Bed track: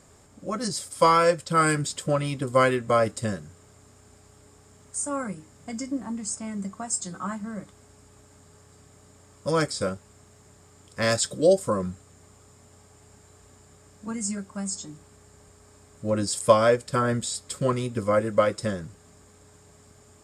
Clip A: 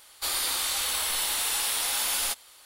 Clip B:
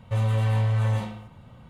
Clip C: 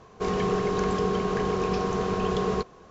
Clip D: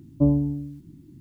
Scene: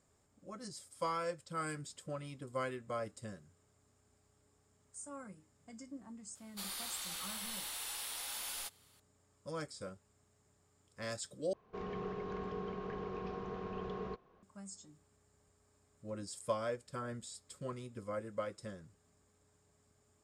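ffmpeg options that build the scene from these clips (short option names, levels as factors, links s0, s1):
-filter_complex "[0:a]volume=0.119[s0];[3:a]lowpass=3100[s1];[s0]asplit=2[s2][s3];[s2]atrim=end=11.534[s4];[s1]atrim=end=2.9,asetpts=PTS-STARTPTS,volume=0.158[s5];[s3]atrim=start=14.426[s6];[1:a]atrim=end=2.65,asetpts=PTS-STARTPTS,volume=0.178,afade=t=in:d=0.004:c=hsin,afade=t=out:st=2.646:d=0.004:c=hsin,adelay=6350[s7];[s4][s5]acrossfade=d=0.004:c1=hsin:c2=hsin[s8];[s8][s6]acrossfade=d=0.004:c1=hsin:c2=hsin[s9];[s9][s7]amix=inputs=2:normalize=0"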